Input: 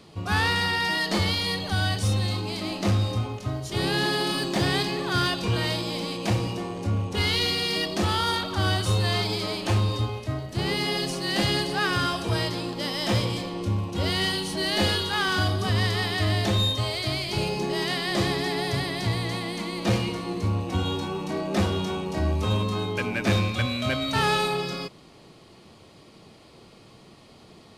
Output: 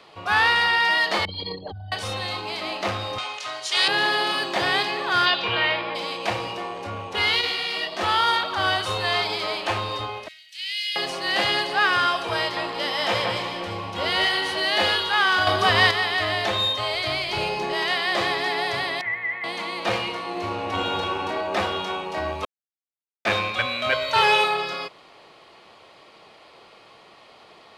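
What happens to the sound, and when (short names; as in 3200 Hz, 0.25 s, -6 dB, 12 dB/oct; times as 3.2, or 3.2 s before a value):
1.25–1.92 formant sharpening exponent 3
3.18–3.88 weighting filter ITU-R 468
5.25–5.94 synth low-pass 4500 Hz -> 1800 Hz, resonance Q 1.8
7.41–8.01 detuned doubles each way 48 cents
10.28–10.96 inverse Chebyshev high-pass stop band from 1200 Hz
12.39–14.6 echo with dull and thin repeats by turns 0.175 s, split 2300 Hz, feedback 53%, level -3.5 dB
15.47–15.91 gain +6.5 dB
16.9–17.74 low shelf 150 Hz +9 dB
19.01–19.44 ladder low-pass 2100 Hz, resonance 85%
20.29–21.17 reverb throw, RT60 2.4 s, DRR 0 dB
22.45–23.25 mute
23.92–24.44 comb 2 ms, depth 79%
whole clip: three-band isolator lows -20 dB, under 500 Hz, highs -13 dB, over 3800 Hz; gain +7 dB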